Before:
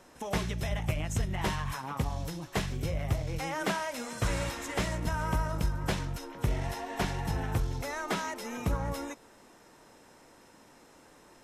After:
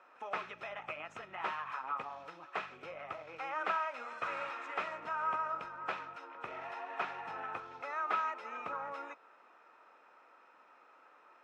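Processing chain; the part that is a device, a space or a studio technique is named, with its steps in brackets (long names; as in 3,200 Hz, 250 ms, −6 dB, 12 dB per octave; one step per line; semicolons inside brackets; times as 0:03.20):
tin-can telephone (band-pass filter 660–2,000 Hz; hollow resonant body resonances 1,300/2,500 Hz, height 13 dB, ringing for 25 ms)
level −3 dB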